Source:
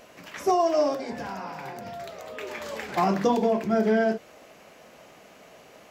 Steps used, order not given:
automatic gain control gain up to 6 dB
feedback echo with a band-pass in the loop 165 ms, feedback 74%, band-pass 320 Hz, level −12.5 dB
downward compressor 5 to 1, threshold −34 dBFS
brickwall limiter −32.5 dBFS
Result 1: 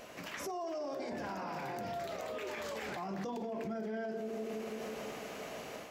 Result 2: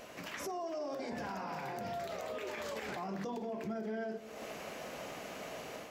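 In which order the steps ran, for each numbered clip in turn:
feedback echo with a band-pass in the loop, then downward compressor, then automatic gain control, then brickwall limiter
automatic gain control, then downward compressor, then brickwall limiter, then feedback echo with a band-pass in the loop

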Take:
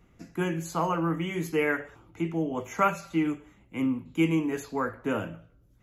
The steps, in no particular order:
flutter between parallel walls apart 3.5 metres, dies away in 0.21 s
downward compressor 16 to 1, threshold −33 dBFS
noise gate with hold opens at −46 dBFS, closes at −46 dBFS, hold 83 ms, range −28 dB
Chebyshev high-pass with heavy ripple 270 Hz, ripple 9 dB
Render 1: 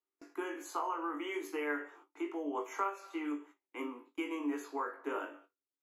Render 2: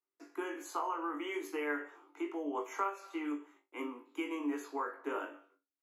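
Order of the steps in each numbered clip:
Chebyshev high-pass with heavy ripple, then downward compressor, then flutter between parallel walls, then noise gate with hold
noise gate with hold, then Chebyshev high-pass with heavy ripple, then downward compressor, then flutter between parallel walls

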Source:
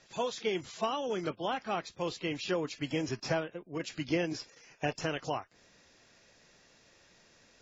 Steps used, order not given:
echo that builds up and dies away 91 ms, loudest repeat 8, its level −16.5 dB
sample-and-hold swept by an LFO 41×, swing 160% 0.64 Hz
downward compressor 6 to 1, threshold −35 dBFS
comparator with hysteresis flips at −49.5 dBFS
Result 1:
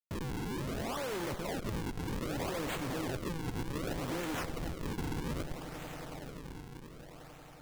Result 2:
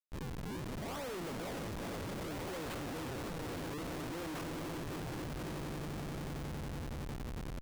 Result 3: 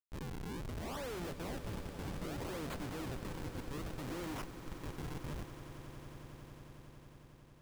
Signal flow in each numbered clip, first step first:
comparator with hysteresis, then downward compressor, then echo that builds up and dies away, then sample-and-hold swept by an LFO
sample-and-hold swept by an LFO, then downward compressor, then echo that builds up and dies away, then comparator with hysteresis
downward compressor, then sample-and-hold swept by an LFO, then comparator with hysteresis, then echo that builds up and dies away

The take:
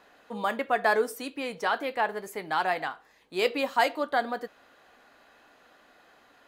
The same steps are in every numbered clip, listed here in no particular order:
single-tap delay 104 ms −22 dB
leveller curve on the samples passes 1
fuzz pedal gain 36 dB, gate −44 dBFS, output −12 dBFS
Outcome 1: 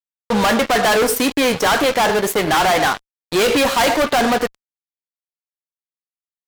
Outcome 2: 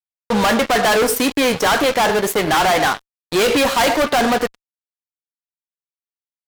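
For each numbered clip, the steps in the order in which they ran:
single-tap delay, then leveller curve on the samples, then fuzz pedal
leveller curve on the samples, then single-tap delay, then fuzz pedal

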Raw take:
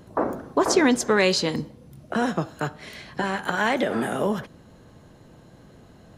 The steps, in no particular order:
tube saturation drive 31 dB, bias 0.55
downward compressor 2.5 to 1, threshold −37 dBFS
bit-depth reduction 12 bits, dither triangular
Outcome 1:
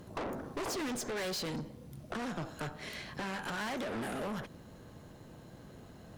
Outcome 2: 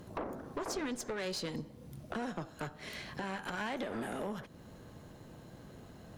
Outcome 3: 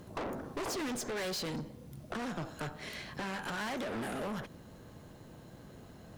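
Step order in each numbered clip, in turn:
bit-depth reduction, then tube saturation, then downward compressor
bit-depth reduction, then downward compressor, then tube saturation
tube saturation, then bit-depth reduction, then downward compressor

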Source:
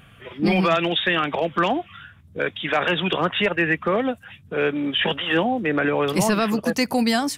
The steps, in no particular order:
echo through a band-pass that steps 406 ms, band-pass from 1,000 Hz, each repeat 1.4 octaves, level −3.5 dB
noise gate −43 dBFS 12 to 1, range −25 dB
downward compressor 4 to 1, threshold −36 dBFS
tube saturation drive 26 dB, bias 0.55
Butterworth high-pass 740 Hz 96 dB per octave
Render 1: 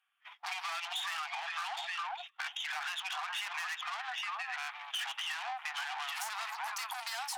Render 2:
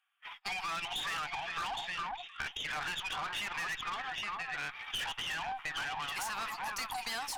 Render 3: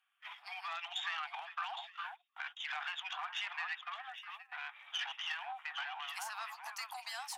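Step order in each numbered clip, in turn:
echo through a band-pass that steps, then tube saturation, then Butterworth high-pass, then noise gate, then downward compressor
Butterworth high-pass, then noise gate, then echo through a band-pass that steps, then tube saturation, then downward compressor
downward compressor, then echo through a band-pass that steps, then tube saturation, then noise gate, then Butterworth high-pass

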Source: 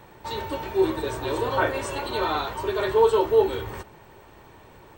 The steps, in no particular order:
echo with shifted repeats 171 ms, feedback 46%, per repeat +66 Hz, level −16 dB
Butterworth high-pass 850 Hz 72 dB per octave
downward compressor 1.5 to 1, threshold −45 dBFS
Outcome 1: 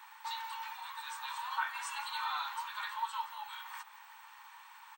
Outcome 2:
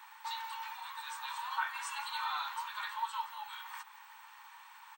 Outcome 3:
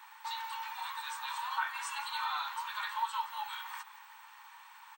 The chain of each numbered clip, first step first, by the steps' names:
downward compressor, then echo with shifted repeats, then Butterworth high-pass
downward compressor, then Butterworth high-pass, then echo with shifted repeats
Butterworth high-pass, then downward compressor, then echo with shifted repeats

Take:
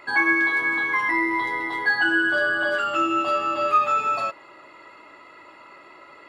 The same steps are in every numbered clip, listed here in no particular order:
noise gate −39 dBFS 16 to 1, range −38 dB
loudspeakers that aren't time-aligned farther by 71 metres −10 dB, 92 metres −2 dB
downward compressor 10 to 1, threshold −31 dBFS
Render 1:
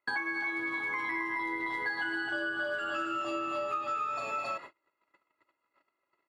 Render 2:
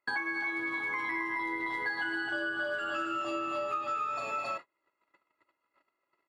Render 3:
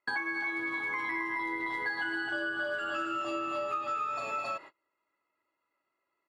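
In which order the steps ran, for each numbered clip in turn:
loudspeakers that aren't time-aligned, then noise gate, then downward compressor
loudspeakers that aren't time-aligned, then downward compressor, then noise gate
noise gate, then loudspeakers that aren't time-aligned, then downward compressor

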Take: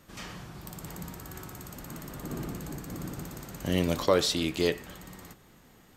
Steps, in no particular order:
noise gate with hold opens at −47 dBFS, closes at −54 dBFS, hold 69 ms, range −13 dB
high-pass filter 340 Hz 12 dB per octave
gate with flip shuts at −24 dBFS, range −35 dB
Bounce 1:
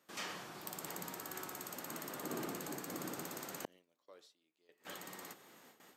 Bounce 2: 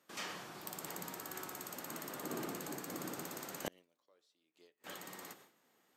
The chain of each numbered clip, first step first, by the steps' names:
gate with flip, then noise gate with hold, then high-pass filter
high-pass filter, then gate with flip, then noise gate with hold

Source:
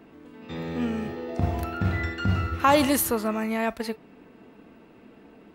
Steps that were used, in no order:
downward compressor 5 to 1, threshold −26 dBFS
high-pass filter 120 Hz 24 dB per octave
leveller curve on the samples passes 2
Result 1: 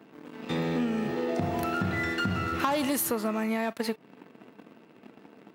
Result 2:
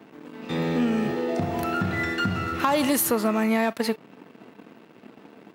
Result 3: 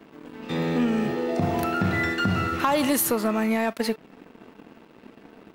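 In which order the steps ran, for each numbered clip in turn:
leveller curve on the samples, then high-pass filter, then downward compressor
downward compressor, then leveller curve on the samples, then high-pass filter
high-pass filter, then downward compressor, then leveller curve on the samples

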